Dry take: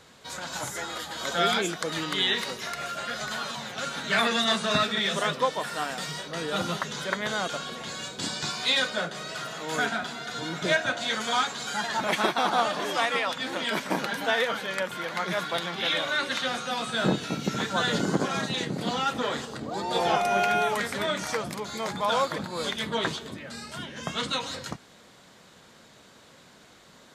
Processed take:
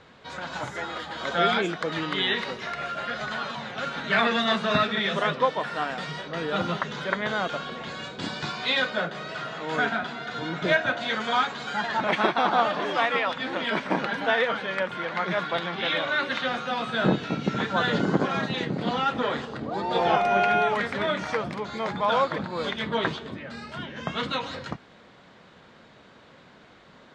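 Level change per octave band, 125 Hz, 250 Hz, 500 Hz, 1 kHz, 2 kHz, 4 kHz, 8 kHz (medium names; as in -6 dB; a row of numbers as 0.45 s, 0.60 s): +2.5 dB, +2.5 dB, +2.5 dB, +2.5 dB, +2.0 dB, -2.0 dB, -12.5 dB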